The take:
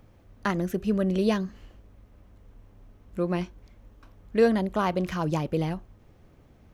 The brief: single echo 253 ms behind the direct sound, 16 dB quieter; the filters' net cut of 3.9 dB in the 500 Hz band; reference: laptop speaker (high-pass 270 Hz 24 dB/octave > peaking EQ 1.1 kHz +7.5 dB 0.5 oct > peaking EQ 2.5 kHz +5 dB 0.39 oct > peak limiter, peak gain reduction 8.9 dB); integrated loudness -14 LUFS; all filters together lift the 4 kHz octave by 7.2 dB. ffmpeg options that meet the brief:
-af "highpass=f=270:w=0.5412,highpass=f=270:w=1.3066,equalizer=f=500:t=o:g=-5,equalizer=f=1100:t=o:w=0.5:g=7.5,equalizer=f=2500:t=o:w=0.39:g=5,equalizer=f=4000:t=o:g=8,aecho=1:1:253:0.158,volume=8.41,alimiter=limit=1:level=0:latency=1"

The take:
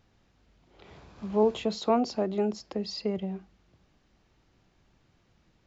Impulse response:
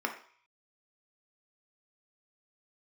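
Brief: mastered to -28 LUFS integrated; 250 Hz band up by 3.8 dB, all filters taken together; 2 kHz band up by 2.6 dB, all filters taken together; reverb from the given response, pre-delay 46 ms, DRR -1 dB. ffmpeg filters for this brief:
-filter_complex "[0:a]equalizer=f=250:t=o:g=4.5,equalizer=f=2000:t=o:g=3.5,asplit=2[s0][s1];[1:a]atrim=start_sample=2205,adelay=46[s2];[s1][s2]afir=irnorm=-1:irlink=0,volume=0.501[s3];[s0][s3]amix=inputs=2:normalize=0,volume=0.668"

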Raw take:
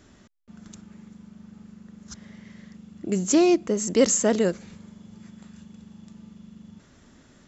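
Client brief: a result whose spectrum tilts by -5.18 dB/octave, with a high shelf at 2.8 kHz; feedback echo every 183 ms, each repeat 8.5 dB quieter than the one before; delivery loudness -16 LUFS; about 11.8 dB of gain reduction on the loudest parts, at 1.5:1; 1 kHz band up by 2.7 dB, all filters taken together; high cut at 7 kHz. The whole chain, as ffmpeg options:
-af "lowpass=7000,equalizer=f=1000:t=o:g=5,highshelf=f=2800:g=-4.5,acompressor=threshold=0.00398:ratio=1.5,aecho=1:1:183|366|549|732:0.376|0.143|0.0543|0.0206,volume=8.41"

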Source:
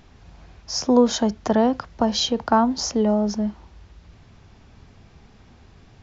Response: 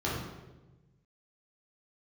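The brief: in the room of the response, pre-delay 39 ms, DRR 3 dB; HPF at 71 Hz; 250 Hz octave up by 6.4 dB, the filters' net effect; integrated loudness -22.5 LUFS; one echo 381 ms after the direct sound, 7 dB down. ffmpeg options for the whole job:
-filter_complex "[0:a]highpass=71,equalizer=f=250:t=o:g=7,aecho=1:1:381:0.447,asplit=2[s0][s1];[1:a]atrim=start_sample=2205,adelay=39[s2];[s1][s2]afir=irnorm=-1:irlink=0,volume=0.251[s3];[s0][s3]amix=inputs=2:normalize=0,volume=0.282"

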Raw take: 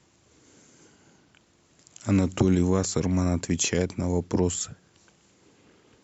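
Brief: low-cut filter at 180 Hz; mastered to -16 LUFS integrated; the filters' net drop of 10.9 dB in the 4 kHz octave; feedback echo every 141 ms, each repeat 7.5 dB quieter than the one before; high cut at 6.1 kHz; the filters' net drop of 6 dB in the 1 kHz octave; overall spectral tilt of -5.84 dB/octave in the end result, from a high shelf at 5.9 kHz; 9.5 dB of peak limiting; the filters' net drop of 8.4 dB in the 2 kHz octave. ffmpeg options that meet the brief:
-af "highpass=180,lowpass=6100,equalizer=f=1000:t=o:g=-6,equalizer=f=2000:t=o:g=-5.5,equalizer=f=4000:t=o:g=-8,highshelf=f=5900:g=-8.5,alimiter=limit=0.0708:level=0:latency=1,aecho=1:1:141|282|423|564|705:0.422|0.177|0.0744|0.0312|0.0131,volume=7.08"

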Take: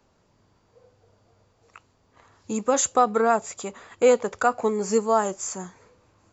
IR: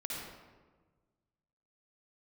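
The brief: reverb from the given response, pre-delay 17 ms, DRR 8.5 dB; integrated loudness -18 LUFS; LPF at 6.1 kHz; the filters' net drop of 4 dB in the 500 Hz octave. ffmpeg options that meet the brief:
-filter_complex "[0:a]lowpass=6100,equalizer=f=500:t=o:g=-4.5,asplit=2[s0][s1];[1:a]atrim=start_sample=2205,adelay=17[s2];[s1][s2]afir=irnorm=-1:irlink=0,volume=0.299[s3];[s0][s3]amix=inputs=2:normalize=0,volume=2.37"

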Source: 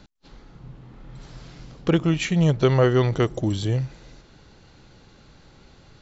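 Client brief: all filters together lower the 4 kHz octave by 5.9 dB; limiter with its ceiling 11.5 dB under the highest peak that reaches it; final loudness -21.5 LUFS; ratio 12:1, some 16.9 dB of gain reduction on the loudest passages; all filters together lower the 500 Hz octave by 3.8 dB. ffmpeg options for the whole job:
-af "equalizer=f=500:t=o:g=-5,equalizer=f=4000:t=o:g=-8.5,acompressor=threshold=0.0224:ratio=12,volume=12.6,alimiter=limit=0.316:level=0:latency=1"

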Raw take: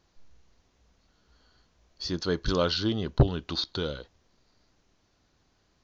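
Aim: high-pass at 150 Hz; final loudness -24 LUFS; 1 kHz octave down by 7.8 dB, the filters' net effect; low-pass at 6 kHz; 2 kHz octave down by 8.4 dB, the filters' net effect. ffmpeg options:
-af "highpass=150,lowpass=6000,equalizer=f=1000:t=o:g=-7.5,equalizer=f=2000:t=o:g=-9,volume=2.37"

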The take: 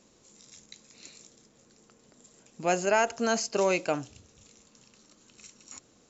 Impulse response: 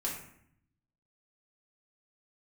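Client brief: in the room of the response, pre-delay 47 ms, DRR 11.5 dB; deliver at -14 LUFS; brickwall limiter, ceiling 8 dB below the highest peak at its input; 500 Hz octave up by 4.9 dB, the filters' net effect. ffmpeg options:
-filter_complex "[0:a]equalizer=f=500:t=o:g=6.5,alimiter=limit=0.119:level=0:latency=1,asplit=2[s0][s1];[1:a]atrim=start_sample=2205,adelay=47[s2];[s1][s2]afir=irnorm=-1:irlink=0,volume=0.178[s3];[s0][s3]amix=inputs=2:normalize=0,volume=5.62"

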